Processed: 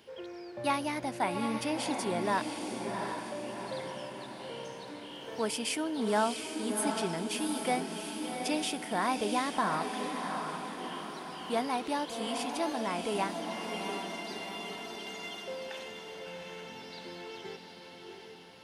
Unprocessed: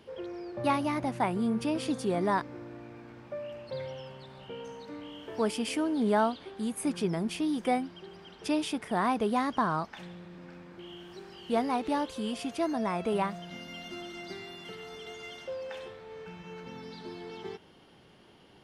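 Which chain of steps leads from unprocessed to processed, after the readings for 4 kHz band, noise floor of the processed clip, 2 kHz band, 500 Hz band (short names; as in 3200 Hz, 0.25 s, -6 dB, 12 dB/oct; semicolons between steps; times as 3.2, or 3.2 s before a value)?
+4.0 dB, -49 dBFS, +2.0 dB, -2.0 dB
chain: tilt +2 dB/oct; notch 1200 Hz, Q 12; diffused feedback echo 0.731 s, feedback 56%, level -5 dB; gain -1.5 dB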